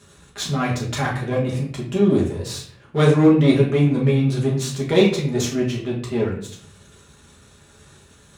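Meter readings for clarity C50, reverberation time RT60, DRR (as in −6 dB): 6.0 dB, 0.55 s, −4.5 dB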